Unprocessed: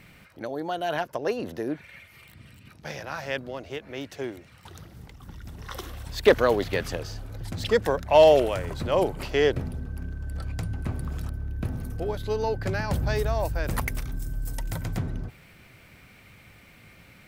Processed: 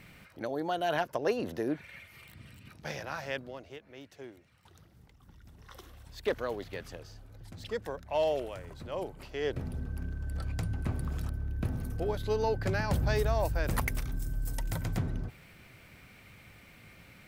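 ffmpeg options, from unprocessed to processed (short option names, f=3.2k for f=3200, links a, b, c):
-af "volume=9dB,afade=t=out:st=2.89:d=0.95:silence=0.266073,afade=t=in:st=9.4:d=0.4:silence=0.281838"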